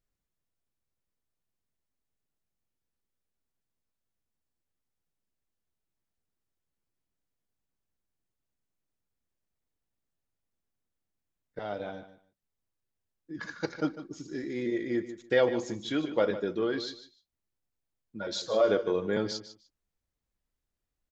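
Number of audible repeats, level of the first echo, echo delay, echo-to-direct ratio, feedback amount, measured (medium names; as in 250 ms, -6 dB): 2, -13.0 dB, 150 ms, -13.0 dB, 18%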